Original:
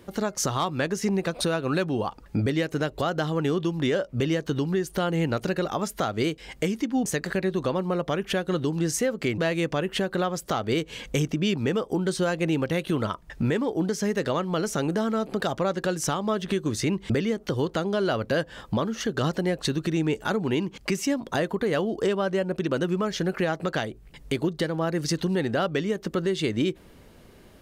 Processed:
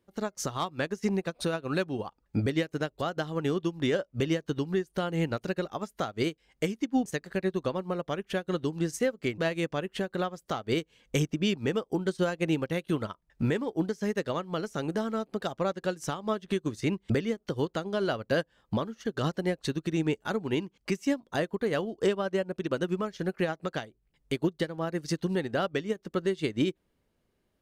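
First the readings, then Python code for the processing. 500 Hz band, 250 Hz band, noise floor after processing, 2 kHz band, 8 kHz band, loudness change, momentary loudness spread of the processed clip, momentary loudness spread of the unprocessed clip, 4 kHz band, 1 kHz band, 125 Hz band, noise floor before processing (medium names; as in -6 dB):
-4.0 dB, -4.0 dB, -75 dBFS, -4.5 dB, -9.5 dB, -4.5 dB, 5 LU, 3 LU, -5.5 dB, -5.0 dB, -5.0 dB, -51 dBFS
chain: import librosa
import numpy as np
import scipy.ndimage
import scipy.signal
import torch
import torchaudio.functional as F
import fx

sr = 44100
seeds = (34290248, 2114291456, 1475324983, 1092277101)

y = fx.upward_expand(x, sr, threshold_db=-37.0, expansion=2.5)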